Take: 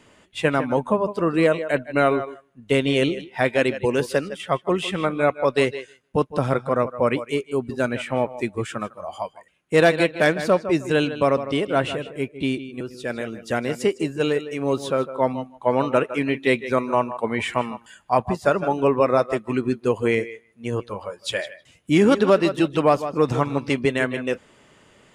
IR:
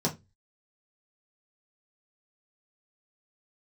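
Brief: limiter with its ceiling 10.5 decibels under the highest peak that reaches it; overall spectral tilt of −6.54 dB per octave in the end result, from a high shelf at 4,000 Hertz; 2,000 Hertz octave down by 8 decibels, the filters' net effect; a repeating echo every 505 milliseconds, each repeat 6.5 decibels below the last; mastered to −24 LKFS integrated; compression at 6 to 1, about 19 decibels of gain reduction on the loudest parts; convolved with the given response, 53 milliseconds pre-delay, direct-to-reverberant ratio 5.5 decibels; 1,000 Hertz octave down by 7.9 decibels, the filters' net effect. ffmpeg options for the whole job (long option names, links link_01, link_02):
-filter_complex "[0:a]equalizer=frequency=1000:width_type=o:gain=-9,equalizer=frequency=2000:width_type=o:gain=-8.5,highshelf=frequency=4000:gain=3.5,acompressor=threshold=-36dB:ratio=6,alimiter=level_in=9.5dB:limit=-24dB:level=0:latency=1,volume=-9.5dB,aecho=1:1:505|1010|1515|2020|2525|3030:0.473|0.222|0.105|0.0491|0.0231|0.0109,asplit=2[link_01][link_02];[1:a]atrim=start_sample=2205,adelay=53[link_03];[link_02][link_03]afir=irnorm=-1:irlink=0,volume=-13.5dB[link_04];[link_01][link_04]amix=inputs=2:normalize=0,volume=14.5dB"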